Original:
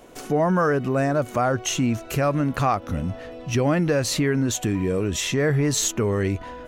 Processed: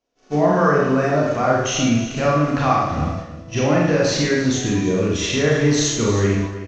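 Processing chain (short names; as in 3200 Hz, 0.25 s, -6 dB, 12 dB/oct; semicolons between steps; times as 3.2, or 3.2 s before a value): added noise blue -46 dBFS; elliptic low-pass 6200 Hz, stop band 60 dB; Schroeder reverb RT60 0.87 s, combs from 27 ms, DRR -4 dB; expander -20 dBFS; on a send: echo 0.315 s -13.5 dB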